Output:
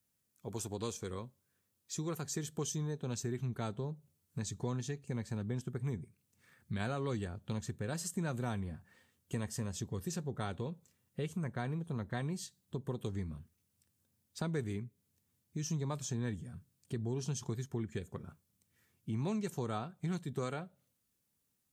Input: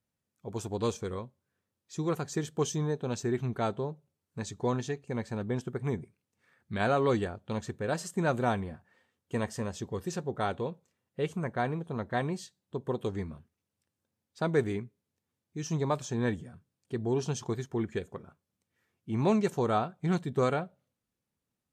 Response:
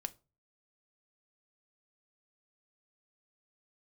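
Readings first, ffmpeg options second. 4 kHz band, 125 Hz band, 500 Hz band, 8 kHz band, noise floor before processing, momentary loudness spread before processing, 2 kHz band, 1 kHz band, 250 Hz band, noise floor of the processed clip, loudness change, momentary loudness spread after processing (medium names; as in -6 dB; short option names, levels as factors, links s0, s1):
-4.0 dB, -3.5 dB, -11.0 dB, 0.0 dB, under -85 dBFS, 13 LU, -9.0 dB, -11.5 dB, -6.5 dB, -81 dBFS, -7.0 dB, 9 LU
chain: -filter_complex "[0:a]acrossover=split=210[s0][s1];[s0]dynaudnorm=f=480:g=11:m=2.51[s2];[s2][s1]amix=inputs=2:normalize=0,equalizer=f=670:t=o:w=1:g=-3,crystalizer=i=2:c=0,acompressor=threshold=0.0112:ratio=2.5"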